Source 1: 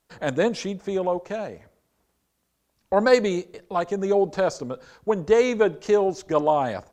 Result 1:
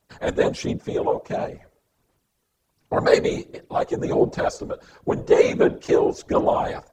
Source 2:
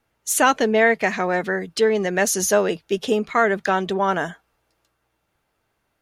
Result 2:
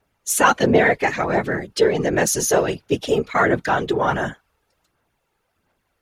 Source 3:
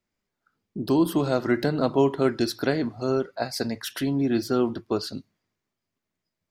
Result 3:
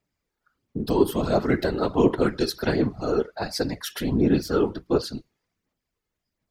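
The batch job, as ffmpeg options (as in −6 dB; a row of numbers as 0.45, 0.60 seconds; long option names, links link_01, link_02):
-af "afftfilt=real='hypot(re,im)*cos(2*PI*random(0))':imag='hypot(re,im)*sin(2*PI*random(1))':win_size=512:overlap=0.75,aphaser=in_gain=1:out_gain=1:delay=2.4:decay=0.38:speed=1.4:type=sinusoidal,volume=6dB"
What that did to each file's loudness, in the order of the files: +1.0, +1.0, +1.0 LU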